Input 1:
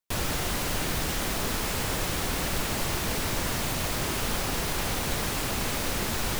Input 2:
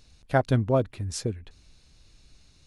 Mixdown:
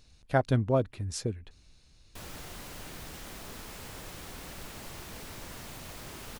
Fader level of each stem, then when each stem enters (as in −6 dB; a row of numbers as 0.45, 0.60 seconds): −15.0, −3.0 decibels; 2.05, 0.00 seconds